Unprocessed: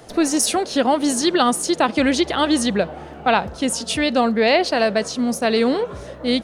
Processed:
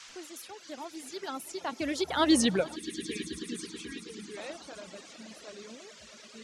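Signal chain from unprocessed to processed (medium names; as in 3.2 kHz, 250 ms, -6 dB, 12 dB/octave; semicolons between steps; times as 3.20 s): Doppler pass-by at 2.38 s, 30 m/s, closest 4.9 m; on a send: echo with a slow build-up 108 ms, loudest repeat 5, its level -15 dB; on the sum: spectral selection erased 2.76–4.37 s, 490–1600 Hz; band noise 980–7000 Hz -46 dBFS; reverb removal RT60 1.8 s; trim -3.5 dB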